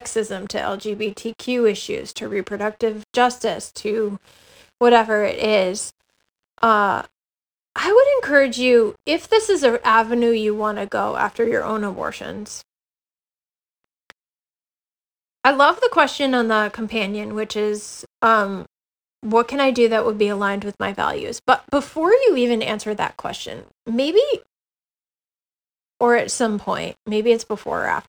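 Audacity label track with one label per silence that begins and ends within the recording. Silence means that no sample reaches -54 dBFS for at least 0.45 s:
7.100000	7.760000	silence
12.640000	13.840000	silence
14.120000	15.450000	silence
18.660000	19.230000	silence
24.460000	26.010000	silence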